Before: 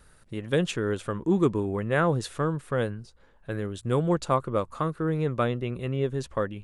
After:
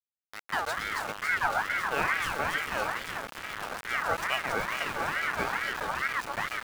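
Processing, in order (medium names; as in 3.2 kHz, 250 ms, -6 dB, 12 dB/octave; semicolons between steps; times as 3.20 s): echo whose repeats swap between lows and highs 139 ms, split 1 kHz, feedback 87%, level -3 dB; small samples zeroed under -26.5 dBFS; ring modulator with a swept carrier 1.4 kHz, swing 30%, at 2.3 Hz; trim -4 dB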